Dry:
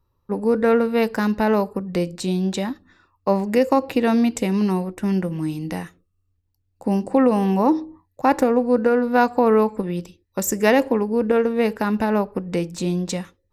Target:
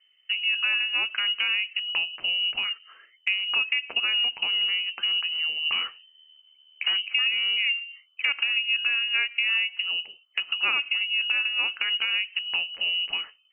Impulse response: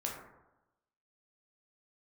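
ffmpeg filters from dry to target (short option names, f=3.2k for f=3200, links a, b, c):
-filter_complex "[0:a]asplit=3[a][b][c];[a]afade=t=out:st=5.65:d=0.02[d];[b]aeval=exprs='0.282*(cos(1*acos(clip(val(0)/0.282,-1,1)))-cos(1*PI/2))+0.1*(cos(5*acos(clip(val(0)/0.282,-1,1)))-cos(5*PI/2))':c=same,afade=t=in:st=5.65:d=0.02,afade=t=out:st=6.96:d=0.02[e];[c]afade=t=in:st=6.96:d=0.02[f];[d][e][f]amix=inputs=3:normalize=0,lowpass=f=2.6k:t=q:w=0.5098,lowpass=f=2.6k:t=q:w=0.6013,lowpass=f=2.6k:t=q:w=0.9,lowpass=f=2.6k:t=q:w=2.563,afreqshift=-3100,acompressor=threshold=-33dB:ratio=2.5,volume=4.5dB"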